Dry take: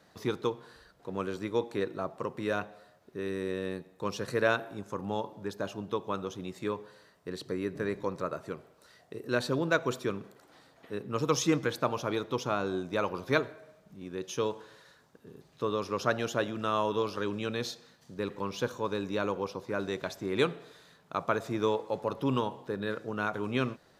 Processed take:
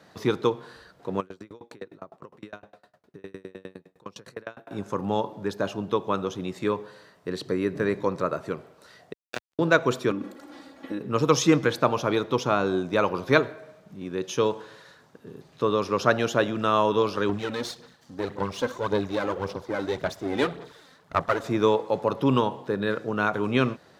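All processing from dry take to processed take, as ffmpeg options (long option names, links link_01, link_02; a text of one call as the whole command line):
ffmpeg -i in.wav -filter_complex "[0:a]asettb=1/sr,asplit=3[link_01][link_02][link_03];[link_01]atrim=end=1.204[link_04];[link_02]atrim=start=1.2:end=4.71,asetpts=PTS-STARTPTS,afade=type=in:duration=0.004:curve=qsin,afade=type=out:start_time=3.506:duration=0.004:curve=qsin,acompressor=threshold=-42dB:ratio=2:attack=3.2:release=140:knee=1:detection=peak,aeval=exprs='val(0)*pow(10,-32*if(lt(mod(9.8*n/s,1),2*abs(9.8)/1000),1-mod(9.8*n/s,1)/(2*abs(9.8)/1000),(mod(9.8*n/s,1)-2*abs(9.8)/1000)/(1-2*abs(9.8)/1000))/20)':channel_layout=same[link_05];[link_03]atrim=start=4.706[link_06];[link_04][link_05]acrossfade=duration=0.004:curve1=hsin:curve2=qsin[link_07];[link_07][link_06]acrossfade=duration=0.004:curve1=qsin:curve2=hsin,asettb=1/sr,asplit=3[link_08][link_09][link_10];[link_08]atrim=end=9.134[link_11];[link_09]atrim=start=9.13:end=9.59,asetpts=PTS-STARTPTS,afade=type=in:duration=0.004:curve=qsin,afade=type=out:start_time=0.456:duration=0.004:curve=qsin,aeval=exprs='val(0)+0.5*0.0141*sgn(val(0))':channel_layout=same,highpass=frequency=350:width=0.5412,highpass=frequency=350:width=1.3066,acrusher=bits=2:mix=0:aa=0.5[link_12];[link_10]atrim=start=9.586[link_13];[link_11][link_12]acrossfade=duration=0.004:curve1=hsin:curve2=qsin[link_14];[link_14][link_13]acrossfade=duration=0.004:curve1=qsin:curve2=hsin,asettb=1/sr,asplit=3[link_15][link_16][link_17];[link_15]atrim=end=10.114[link_18];[link_16]atrim=start=10.11:end=11.01,asetpts=PTS-STARTPTS,afade=type=in:duration=0.004:curve=qsin,afade=type=out:start_time=0.896:duration=0.004:curve=qsin,equalizer=frequency=290:width=2:gain=8.5,acompressor=threshold=-36dB:ratio=4:attack=3.2:release=140:knee=1:detection=peak,aecho=1:1:3.6:0.89,atrim=end_sample=39690[link_19];[link_17]atrim=start=11.006[link_20];[link_18][link_19]acrossfade=duration=0.004:curve1=hsin:curve2=qsin[link_21];[link_21][link_20]acrossfade=duration=0.004:curve1=qsin:curve2=hsin,asettb=1/sr,asplit=3[link_22][link_23][link_24];[link_22]atrim=end=17.294[link_25];[link_23]atrim=start=17.29:end=21.44,asetpts=PTS-STARTPTS,afade=type=in:duration=0.004:curve=qsin,afade=type=out:start_time=4.146:duration=0.004:curve=qsin,aeval=exprs='if(lt(val(0),0),0.251*val(0),val(0))':channel_layout=same,equalizer=frequency=2500:width=7.1:gain=-5,aphaser=in_gain=1:out_gain=1:delay=3.9:decay=0.51:speed=1.8:type=sinusoidal[link_26];[link_24]atrim=start=21.436[link_27];[link_25][link_26]acrossfade=duration=0.004:curve1=hsin:curve2=qsin[link_28];[link_28][link_27]acrossfade=duration=0.004:curve1=qsin:curve2=hsin,highpass=78,highshelf=frequency=7100:gain=-6.5,volume=7.5dB" out.wav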